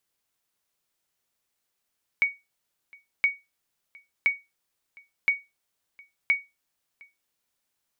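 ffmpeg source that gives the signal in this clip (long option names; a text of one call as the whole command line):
ffmpeg -f lavfi -i "aevalsrc='0.211*(sin(2*PI*2240*mod(t,1.02))*exp(-6.91*mod(t,1.02)/0.22)+0.0422*sin(2*PI*2240*max(mod(t,1.02)-0.71,0))*exp(-6.91*max(mod(t,1.02)-0.71,0)/0.22))':duration=5.1:sample_rate=44100" out.wav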